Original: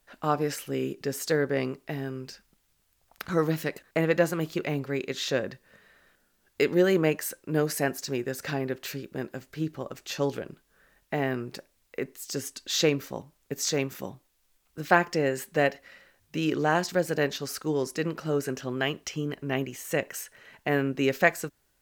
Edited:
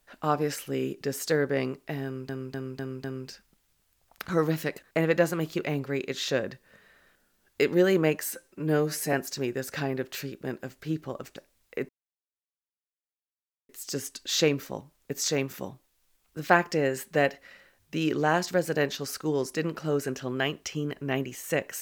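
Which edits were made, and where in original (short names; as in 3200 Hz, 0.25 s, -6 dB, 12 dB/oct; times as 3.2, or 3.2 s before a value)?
2.04–2.29 loop, 5 plays
7.26–7.84 stretch 1.5×
10.07–11.57 cut
12.1 insert silence 1.80 s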